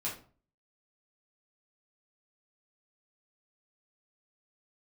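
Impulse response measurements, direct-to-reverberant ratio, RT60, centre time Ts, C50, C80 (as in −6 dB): −7.0 dB, 0.40 s, 28 ms, 7.5 dB, 13.0 dB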